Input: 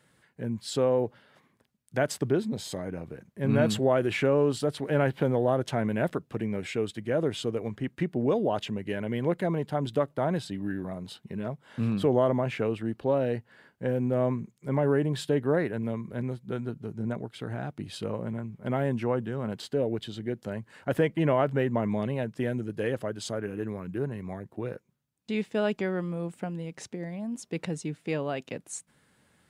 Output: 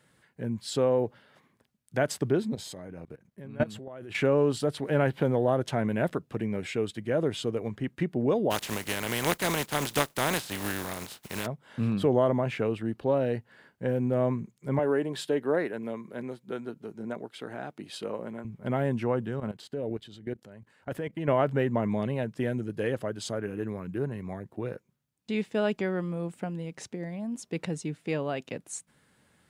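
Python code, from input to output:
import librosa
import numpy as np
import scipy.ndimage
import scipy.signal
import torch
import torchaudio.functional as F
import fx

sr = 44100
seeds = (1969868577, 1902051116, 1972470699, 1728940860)

y = fx.level_steps(x, sr, step_db=21, at=(2.55, 4.15))
y = fx.spec_flatten(y, sr, power=0.37, at=(8.5, 11.45), fade=0.02)
y = fx.highpass(y, sr, hz=270.0, slope=12, at=(14.79, 18.45))
y = fx.level_steps(y, sr, step_db=16, at=(19.4, 21.28))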